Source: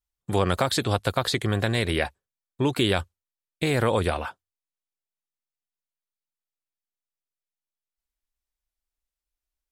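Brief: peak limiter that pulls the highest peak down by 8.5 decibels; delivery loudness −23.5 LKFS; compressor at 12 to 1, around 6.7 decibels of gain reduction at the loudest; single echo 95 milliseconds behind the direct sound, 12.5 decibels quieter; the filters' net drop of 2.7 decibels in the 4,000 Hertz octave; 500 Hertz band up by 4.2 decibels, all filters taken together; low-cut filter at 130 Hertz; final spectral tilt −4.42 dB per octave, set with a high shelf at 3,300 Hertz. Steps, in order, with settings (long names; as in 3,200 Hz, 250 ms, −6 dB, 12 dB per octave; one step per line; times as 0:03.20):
high-pass filter 130 Hz
parametric band 500 Hz +5 dB
high-shelf EQ 3,300 Hz +5.5 dB
parametric band 4,000 Hz −7 dB
downward compressor 12 to 1, threshold −22 dBFS
brickwall limiter −17 dBFS
single-tap delay 95 ms −12.5 dB
level +7 dB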